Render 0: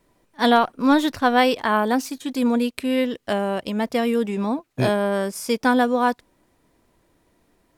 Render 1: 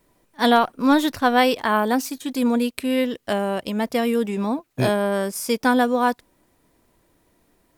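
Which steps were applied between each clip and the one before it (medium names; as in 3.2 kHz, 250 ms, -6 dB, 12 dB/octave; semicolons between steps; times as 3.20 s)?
treble shelf 11 kHz +9 dB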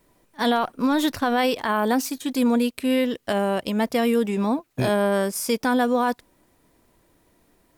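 peak limiter -13.5 dBFS, peak gain reduction 7.5 dB; trim +1 dB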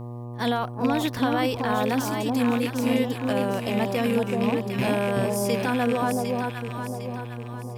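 rattle on loud lows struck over -28 dBFS, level -17 dBFS; echo whose repeats swap between lows and highs 377 ms, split 950 Hz, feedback 65%, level -2 dB; mains buzz 120 Hz, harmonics 10, -31 dBFS -7 dB/octave; trim -4.5 dB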